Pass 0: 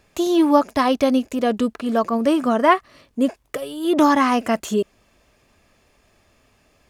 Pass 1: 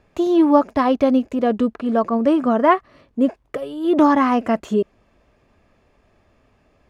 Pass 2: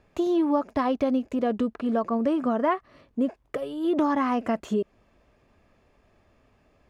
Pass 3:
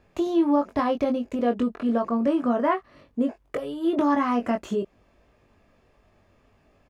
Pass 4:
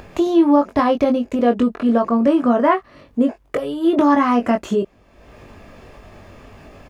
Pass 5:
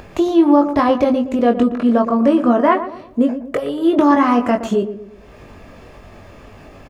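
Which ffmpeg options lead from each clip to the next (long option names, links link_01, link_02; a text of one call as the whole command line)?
ffmpeg -i in.wav -af "lowpass=frequency=1300:poles=1,volume=2dB" out.wav
ffmpeg -i in.wav -af "acompressor=threshold=-19dB:ratio=2.5,volume=-3.5dB" out.wav
ffmpeg -i in.wav -filter_complex "[0:a]asplit=2[link_01][link_02];[link_02]adelay=21,volume=-5dB[link_03];[link_01][link_03]amix=inputs=2:normalize=0" out.wav
ffmpeg -i in.wav -af "acompressor=mode=upward:threshold=-37dB:ratio=2.5,volume=7.5dB" out.wav
ffmpeg -i in.wav -filter_complex "[0:a]asplit=2[link_01][link_02];[link_02]adelay=118,lowpass=frequency=1100:poles=1,volume=-10dB,asplit=2[link_03][link_04];[link_04]adelay=118,lowpass=frequency=1100:poles=1,volume=0.43,asplit=2[link_05][link_06];[link_06]adelay=118,lowpass=frequency=1100:poles=1,volume=0.43,asplit=2[link_07][link_08];[link_08]adelay=118,lowpass=frequency=1100:poles=1,volume=0.43,asplit=2[link_09][link_10];[link_10]adelay=118,lowpass=frequency=1100:poles=1,volume=0.43[link_11];[link_01][link_03][link_05][link_07][link_09][link_11]amix=inputs=6:normalize=0,volume=1.5dB" out.wav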